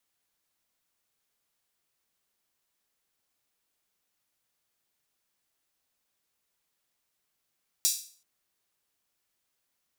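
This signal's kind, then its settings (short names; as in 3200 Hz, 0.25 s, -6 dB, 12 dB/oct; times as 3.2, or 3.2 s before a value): open hi-hat length 0.38 s, high-pass 5200 Hz, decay 0.44 s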